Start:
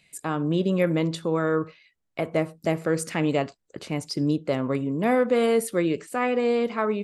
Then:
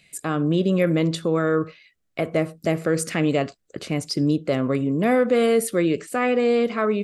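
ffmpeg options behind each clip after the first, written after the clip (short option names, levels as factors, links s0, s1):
-filter_complex "[0:a]equalizer=f=910:t=o:w=0.25:g=-10.5,asplit=2[s0][s1];[s1]alimiter=limit=0.106:level=0:latency=1,volume=0.708[s2];[s0][s2]amix=inputs=2:normalize=0"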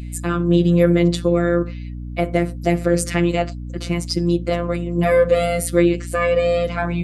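-af "afftfilt=real='hypot(re,im)*cos(PI*b)':imag='0':win_size=1024:overlap=0.75,aeval=exprs='val(0)+0.0178*(sin(2*PI*60*n/s)+sin(2*PI*2*60*n/s)/2+sin(2*PI*3*60*n/s)/3+sin(2*PI*4*60*n/s)/4+sin(2*PI*5*60*n/s)/5)':c=same,volume=2.11"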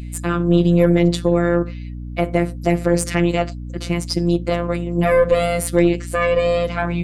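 -af "aeval=exprs='0.891*(cos(1*acos(clip(val(0)/0.891,-1,1)))-cos(1*PI/2))+0.0355*(cos(6*acos(clip(val(0)/0.891,-1,1)))-cos(6*PI/2))':c=same"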